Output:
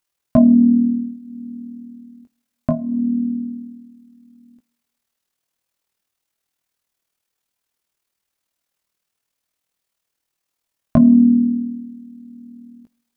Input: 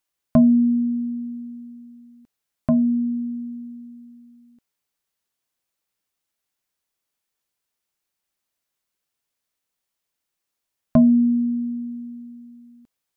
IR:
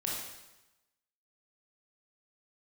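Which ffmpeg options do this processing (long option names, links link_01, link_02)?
-filter_complex "[0:a]flanger=delay=15:depth=5.8:speed=0.25,tremolo=f=39:d=0.571,asplit=2[link_01][link_02];[1:a]atrim=start_sample=2205[link_03];[link_02][link_03]afir=irnorm=-1:irlink=0,volume=-25.5dB[link_04];[link_01][link_04]amix=inputs=2:normalize=0,volume=8.5dB"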